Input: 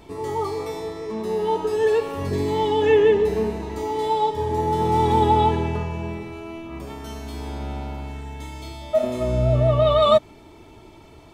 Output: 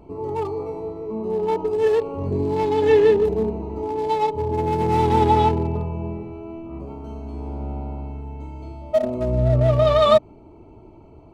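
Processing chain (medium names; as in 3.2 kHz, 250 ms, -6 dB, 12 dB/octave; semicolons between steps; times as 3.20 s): local Wiener filter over 25 samples; trim +1.5 dB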